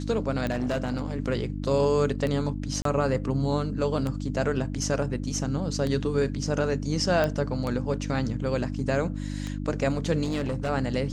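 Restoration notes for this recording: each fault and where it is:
mains hum 50 Hz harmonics 6 −32 dBFS
scratch tick 33 1/3 rpm −17 dBFS
0:00.50–0:01.14: clipping −23 dBFS
0:02.82–0:02.85: drop-out 33 ms
0:07.24: click −13 dBFS
0:10.23–0:10.70: clipping −24 dBFS

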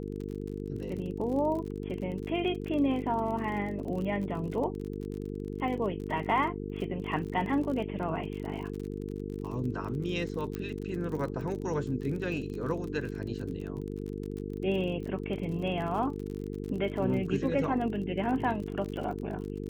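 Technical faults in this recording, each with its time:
mains buzz 50 Hz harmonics 9 −37 dBFS
surface crackle 43 per second −37 dBFS
0:10.55: click −22 dBFS

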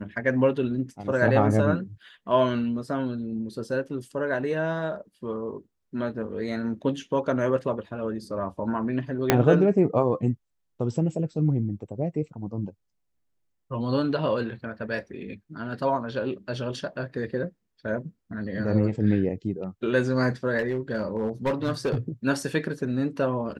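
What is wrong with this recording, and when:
0:09.30: click −2 dBFS
0:20.58–0:21.97: clipping −20.5 dBFS

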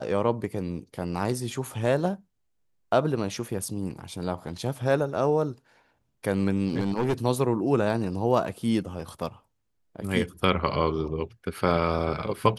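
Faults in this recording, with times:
0:06.69–0:07.13: clipping −20.5 dBFS

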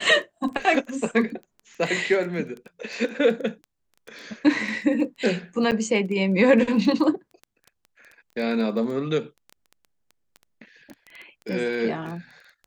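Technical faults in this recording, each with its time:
surface crackle 11 per second −31 dBFS
0:05.71–0:05.72: drop-out 8.1 ms

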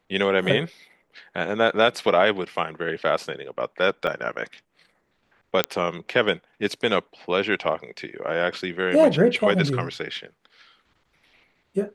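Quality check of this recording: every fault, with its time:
0:04.07: drop-out 3 ms
0:05.64: click −4 dBFS

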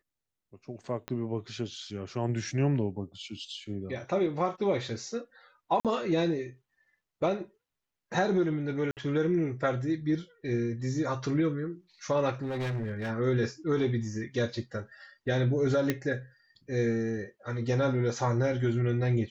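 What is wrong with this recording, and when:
0:01.08: click −21 dBFS
0:05.80–0:05.85: drop-out 47 ms
0:08.91–0:08.97: drop-out 58 ms
0:12.42–0:13.11: clipping −29.5 dBFS
0:15.90: click −13 dBFS

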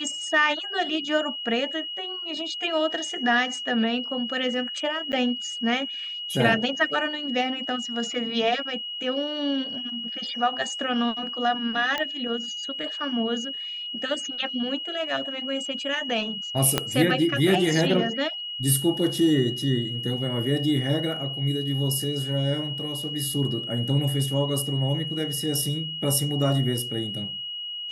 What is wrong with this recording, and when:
whistle 2,900 Hz −31 dBFS
0:05.12–0:05.13: drop-out 8.9 ms
0:11.98: click −13 dBFS
0:16.78: click −5 dBFS

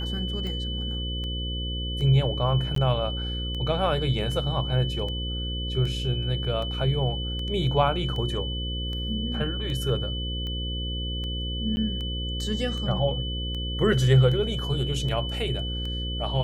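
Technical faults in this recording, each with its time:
mains buzz 60 Hz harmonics 9 −31 dBFS
scratch tick 78 rpm −24 dBFS
whistle 3,000 Hz −33 dBFS
0:02.75–0:02.76: drop-out 13 ms
0:11.76–0:11.77: drop-out 10 ms

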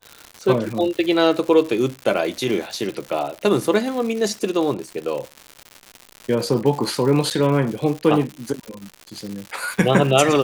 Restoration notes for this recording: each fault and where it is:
surface crackle 200 per second −27 dBFS
0:07.30–0:07.31: drop-out 8.1 ms

